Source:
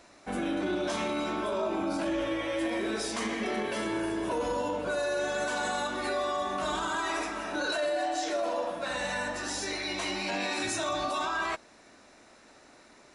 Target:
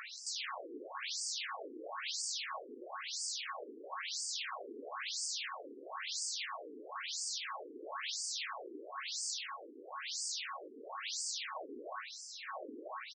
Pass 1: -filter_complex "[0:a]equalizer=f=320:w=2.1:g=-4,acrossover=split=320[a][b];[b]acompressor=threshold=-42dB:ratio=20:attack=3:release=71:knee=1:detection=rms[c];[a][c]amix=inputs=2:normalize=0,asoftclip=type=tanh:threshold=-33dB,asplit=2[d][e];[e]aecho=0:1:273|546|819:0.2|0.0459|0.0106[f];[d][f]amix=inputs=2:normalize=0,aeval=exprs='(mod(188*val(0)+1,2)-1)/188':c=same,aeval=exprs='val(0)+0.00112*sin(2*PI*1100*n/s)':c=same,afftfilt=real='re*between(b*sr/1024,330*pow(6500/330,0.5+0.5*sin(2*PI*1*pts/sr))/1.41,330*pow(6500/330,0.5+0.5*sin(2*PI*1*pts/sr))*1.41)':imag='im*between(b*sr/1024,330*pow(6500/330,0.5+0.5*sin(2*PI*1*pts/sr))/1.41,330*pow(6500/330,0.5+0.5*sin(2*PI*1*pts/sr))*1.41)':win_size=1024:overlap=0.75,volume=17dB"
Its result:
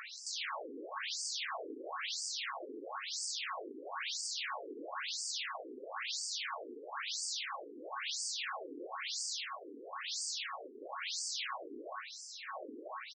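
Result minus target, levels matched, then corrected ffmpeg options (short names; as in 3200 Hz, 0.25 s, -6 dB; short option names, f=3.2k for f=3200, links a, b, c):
compressor: peak gain reduction +8 dB
-filter_complex "[0:a]equalizer=f=320:w=2.1:g=-4,acrossover=split=320[a][b];[b]acompressor=threshold=-33.5dB:ratio=20:attack=3:release=71:knee=1:detection=rms[c];[a][c]amix=inputs=2:normalize=0,asoftclip=type=tanh:threshold=-33dB,asplit=2[d][e];[e]aecho=0:1:273|546|819:0.2|0.0459|0.0106[f];[d][f]amix=inputs=2:normalize=0,aeval=exprs='(mod(188*val(0)+1,2)-1)/188':c=same,aeval=exprs='val(0)+0.00112*sin(2*PI*1100*n/s)':c=same,afftfilt=real='re*between(b*sr/1024,330*pow(6500/330,0.5+0.5*sin(2*PI*1*pts/sr))/1.41,330*pow(6500/330,0.5+0.5*sin(2*PI*1*pts/sr))*1.41)':imag='im*between(b*sr/1024,330*pow(6500/330,0.5+0.5*sin(2*PI*1*pts/sr))/1.41,330*pow(6500/330,0.5+0.5*sin(2*PI*1*pts/sr))*1.41)':win_size=1024:overlap=0.75,volume=17dB"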